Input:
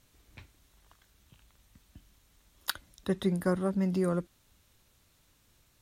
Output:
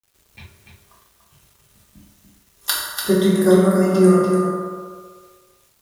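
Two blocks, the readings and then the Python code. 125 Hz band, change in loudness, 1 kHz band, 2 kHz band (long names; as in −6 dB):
+12.5 dB, +14.5 dB, +16.0 dB, +13.0 dB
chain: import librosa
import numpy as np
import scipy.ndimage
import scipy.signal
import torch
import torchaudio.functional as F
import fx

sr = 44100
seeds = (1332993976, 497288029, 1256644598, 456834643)

p1 = fx.peak_eq(x, sr, hz=11000.0, db=7.5, octaves=1.9)
p2 = fx.rev_fdn(p1, sr, rt60_s=1.9, lf_ratio=0.7, hf_ratio=0.45, size_ms=15.0, drr_db=-7.5)
p3 = fx.noise_reduce_blind(p2, sr, reduce_db=9)
p4 = fx.quant_dither(p3, sr, seeds[0], bits=10, dither='none')
p5 = p4 + fx.echo_single(p4, sr, ms=291, db=-6.0, dry=0)
y = p5 * librosa.db_to_amplitude(5.0)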